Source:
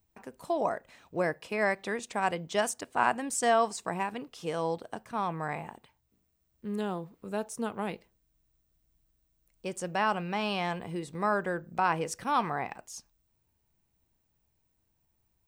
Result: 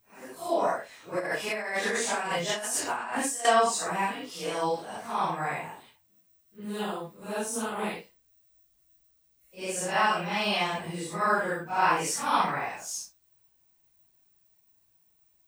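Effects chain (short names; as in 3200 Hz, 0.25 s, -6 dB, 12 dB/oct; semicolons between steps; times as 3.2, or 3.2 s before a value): phase scrambler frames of 0.2 s; tilt +2 dB/oct; 1.19–3.45 negative-ratio compressor -35 dBFS, ratio -1; gain +4 dB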